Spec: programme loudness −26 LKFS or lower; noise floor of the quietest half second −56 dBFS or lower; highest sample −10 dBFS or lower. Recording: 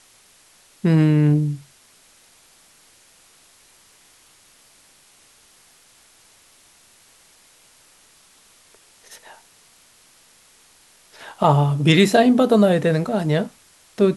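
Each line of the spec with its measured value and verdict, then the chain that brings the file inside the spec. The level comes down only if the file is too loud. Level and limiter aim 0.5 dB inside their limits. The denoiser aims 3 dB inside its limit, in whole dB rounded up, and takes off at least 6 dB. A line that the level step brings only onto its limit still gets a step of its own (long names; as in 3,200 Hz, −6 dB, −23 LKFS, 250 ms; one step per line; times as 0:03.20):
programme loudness −17.5 LKFS: out of spec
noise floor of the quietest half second −54 dBFS: out of spec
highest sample −2.5 dBFS: out of spec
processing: level −9 dB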